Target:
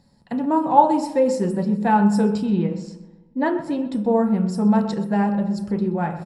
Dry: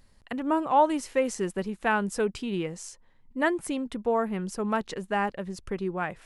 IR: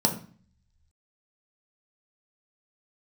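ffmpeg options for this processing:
-filter_complex "[0:a]asettb=1/sr,asplit=3[s0][s1][s2];[s0]atrim=end=2.424[s3];[s1]atrim=start=2.42:end=3.81,asetpts=PTS-STARTPTS,afade=t=in:d=0.004:c=qsin,afade=t=out:st=1.386:d=0.004:c=qsin,lowpass=4400[s4];[s2]atrim=start=3.806[s5];[s3][s4]acrossfade=d=0.004:c1=hsin:c2=qsin[s6];[s6][s5]acrossfade=d=0.004:c1=qsin:c2=hsin,asplit=2[s7][s8];[s8]adelay=127,lowpass=f=2700:p=1,volume=0.211,asplit=2[s9][s10];[s10]adelay=127,lowpass=f=2700:p=1,volume=0.51,asplit=2[s11][s12];[s12]adelay=127,lowpass=f=2700:p=1,volume=0.51,asplit=2[s13][s14];[s14]adelay=127,lowpass=f=2700:p=1,volume=0.51,asplit=2[s15][s16];[s16]adelay=127,lowpass=f=2700:p=1,volume=0.51[s17];[s7][s9][s11][s13][s15][s17]amix=inputs=6:normalize=0[s18];[1:a]atrim=start_sample=2205,asetrate=41454,aresample=44100[s19];[s18][s19]afir=irnorm=-1:irlink=0,volume=0.316"

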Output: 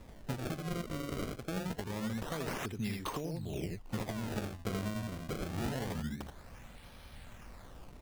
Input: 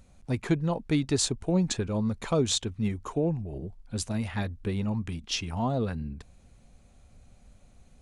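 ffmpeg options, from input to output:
-filter_complex "[0:a]asplit=2[s0][s1];[s1]acompressor=threshold=0.0224:ratio=6,volume=0.891[s2];[s0][s2]amix=inputs=2:normalize=0,aemphasis=mode=production:type=75fm,asplit=2[s3][s4];[s4]aecho=0:1:62|79:0.168|0.596[s5];[s3][s5]amix=inputs=2:normalize=0,acrossover=split=110|1200[s6][s7][s8];[s6]acompressor=threshold=0.00631:ratio=4[s9];[s7]acompressor=threshold=0.0282:ratio=4[s10];[s8]acompressor=threshold=0.0355:ratio=4[s11];[s9][s10][s11]amix=inputs=3:normalize=0,alimiter=limit=0.0708:level=0:latency=1:release=495,acrusher=samples=29:mix=1:aa=0.000001:lfo=1:lforange=46.4:lforate=0.25,volume=0.75"

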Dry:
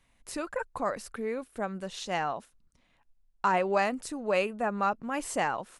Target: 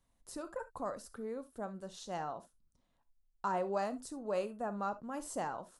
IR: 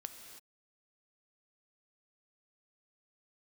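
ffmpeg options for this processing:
-filter_complex "[0:a]equalizer=f=2300:t=o:w=0.94:g=-13.5[s0];[1:a]atrim=start_sample=2205,atrim=end_sample=3528[s1];[s0][s1]afir=irnorm=-1:irlink=0,volume=0.708"

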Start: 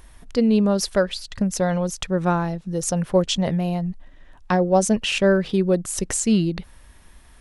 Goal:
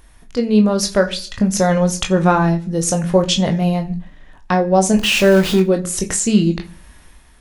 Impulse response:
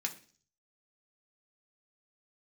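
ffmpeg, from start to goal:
-filter_complex "[0:a]asettb=1/sr,asplit=3[s0][s1][s2];[s0]atrim=end=4.984[s3];[s1]atrim=start=4.98:end=5.6,asetpts=PTS-STARTPTS,afade=t=in:d=0.004:c=qsin,afade=t=out:st=0.616:d=0.004:c=qsin,aeval=exprs='val(0)+0.5*0.0631*sgn(val(0))':c=same[s4];[s2]atrim=start=5.596[s5];[s3][s4]acrossfade=d=0.004:c1=hsin:c2=qsin[s6];[s6][s5]acrossfade=d=0.004:c1=qsin:c2=hsin,asplit=2[s7][s8];[1:a]atrim=start_sample=2205,adelay=21[s9];[s8][s9]afir=irnorm=-1:irlink=0,volume=0.531[s10];[s7][s10]amix=inputs=2:normalize=0,dynaudnorm=f=110:g=9:m=3.76,volume=0.891"

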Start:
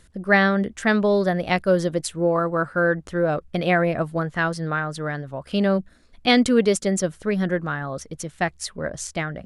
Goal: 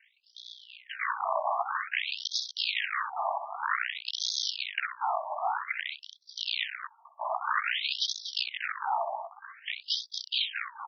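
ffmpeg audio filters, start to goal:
-filter_complex "[0:a]highpass=f=64:w=0.5412,highpass=f=64:w=1.3066,aecho=1:1:2.3:0.92,asplit=2[s0][s1];[s1]acontrast=80,volume=0.794[s2];[s0][s2]amix=inputs=2:normalize=0,alimiter=limit=0.531:level=0:latency=1:release=10,dynaudnorm=f=560:g=3:m=2.99,asetrate=38367,aresample=44100,aeval=exprs='val(0)*sin(2*PI*50*n/s)':c=same,asetrate=26222,aresample=44100,atempo=1.68179,aeval=exprs='1.58*(cos(1*acos(clip(val(0)/1.58,-1,1)))-cos(1*PI/2))+0.141*(cos(3*acos(clip(val(0)/1.58,-1,1)))-cos(3*PI/2))+0.0447*(cos(6*acos(clip(val(0)/1.58,-1,1)))-cos(6*PI/2))+0.316*(cos(7*acos(clip(val(0)/1.58,-1,1)))-cos(7*PI/2))+0.0282*(cos(8*acos(clip(val(0)/1.58,-1,1)))-cos(8*PI/2))':c=same,aeval=exprs='(mod(4.47*val(0)+1,2)-1)/4.47':c=same,aecho=1:1:64.14|236.2:0.398|0.355,afftfilt=real='re*between(b*sr/1024,820*pow(4700/820,0.5+0.5*sin(2*PI*0.52*pts/sr))/1.41,820*pow(4700/820,0.5+0.5*sin(2*PI*0.52*pts/sr))*1.41)':imag='im*between(b*sr/1024,820*pow(4700/820,0.5+0.5*sin(2*PI*0.52*pts/sr))/1.41,820*pow(4700/820,0.5+0.5*sin(2*PI*0.52*pts/sr))*1.41)':win_size=1024:overlap=0.75,volume=0.891"

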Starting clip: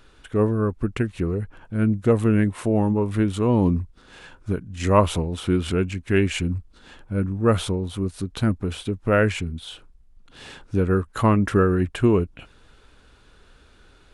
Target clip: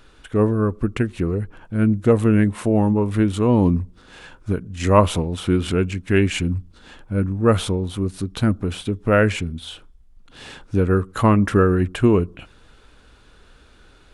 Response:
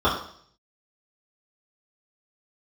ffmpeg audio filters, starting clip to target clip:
-filter_complex "[0:a]asplit=2[s0][s1];[s1]equalizer=f=1800:t=o:w=2.3:g=-13.5[s2];[1:a]atrim=start_sample=2205[s3];[s2][s3]afir=irnorm=-1:irlink=0,volume=0.0133[s4];[s0][s4]amix=inputs=2:normalize=0,volume=1.33"

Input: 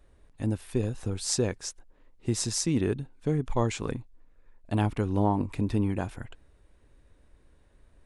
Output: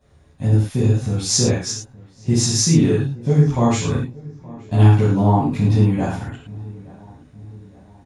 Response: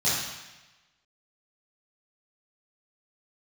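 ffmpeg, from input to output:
-filter_complex "[0:a]asplit=2[s0][s1];[s1]adelay=871,lowpass=f=1500:p=1,volume=0.0891,asplit=2[s2][s3];[s3]adelay=871,lowpass=f=1500:p=1,volume=0.52,asplit=2[s4][s5];[s5]adelay=871,lowpass=f=1500:p=1,volume=0.52,asplit=2[s6][s7];[s7]adelay=871,lowpass=f=1500:p=1,volume=0.52[s8];[s0][s2][s4][s6][s8]amix=inputs=5:normalize=0[s9];[1:a]atrim=start_sample=2205,atrim=end_sample=6174[s10];[s9][s10]afir=irnorm=-1:irlink=0,volume=0.708"

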